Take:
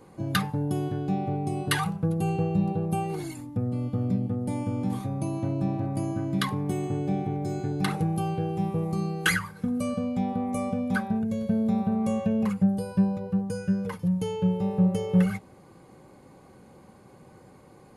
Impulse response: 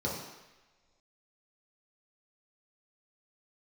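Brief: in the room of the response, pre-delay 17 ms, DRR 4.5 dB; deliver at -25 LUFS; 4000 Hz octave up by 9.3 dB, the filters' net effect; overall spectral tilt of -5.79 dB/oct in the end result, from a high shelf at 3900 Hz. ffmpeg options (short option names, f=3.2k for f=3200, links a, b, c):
-filter_complex "[0:a]highshelf=f=3.9k:g=6,equalizer=f=4k:t=o:g=8.5,asplit=2[a][b];[1:a]atrim=start_sample=2205,adelay=17[c];[b][c]afir=irnorm=-1:irlink=0,volume=-11dB[d];[a][d]amix=inputs=2:normalize=0,volume=-1.5dB"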